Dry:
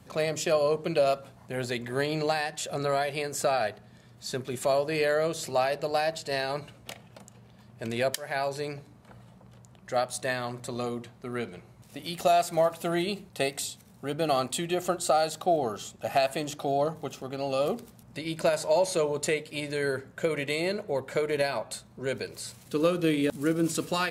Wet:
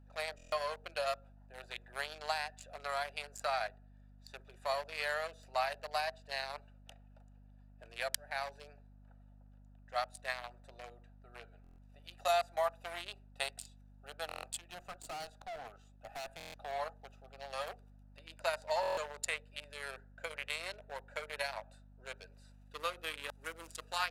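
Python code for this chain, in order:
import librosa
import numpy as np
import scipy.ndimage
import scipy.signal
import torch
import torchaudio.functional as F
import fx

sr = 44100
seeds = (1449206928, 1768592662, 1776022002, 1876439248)

y = fx.wiener(x, sr, points=41)
y = scipy.signal.sosfilt(scipy.signal.butter(4, 780.0, 'highpass', fs=sr, output='sos'), y)
y = fx.add_hum(y, sr, base_hz=50, snr_db=18)
y = fx.tube_stage(y, sr, drive_db=39.0, bias=0.5, at=(14.58, 16.48))
y = fx.buffer_glitch(y, sr, at_s=(0.36, 11.62, 14.27, 16.38, 18.81), block=1024, repeats=6)
y = F.gain(torch.from_numpy(y), -2.0).numpy()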